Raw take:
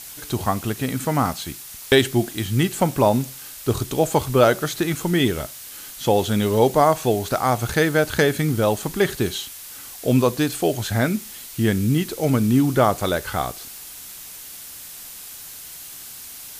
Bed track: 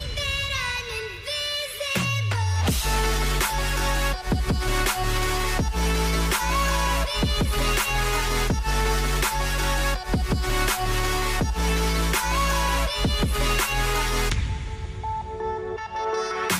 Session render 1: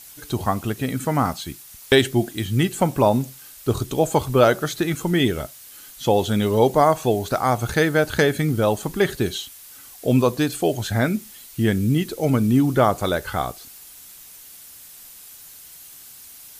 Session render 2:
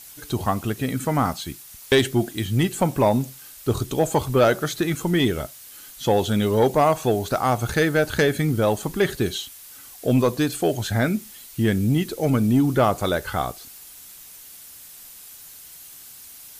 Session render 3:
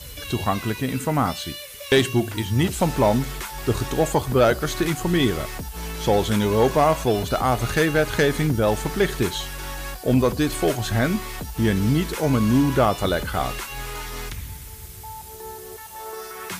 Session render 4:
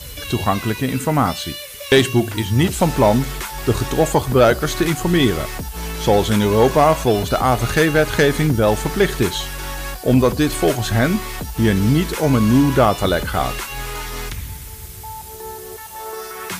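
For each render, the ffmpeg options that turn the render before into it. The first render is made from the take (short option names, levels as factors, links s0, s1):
-af "afftdn=nr=7:nf=-38"
-af "asoftclip=type=tanh:threshold=0.376"
-filter_complex "[1:a]volume=0.355[s0];[0:a][s0]amix=inputs=2:normalize=0"
-af "volume=1.68"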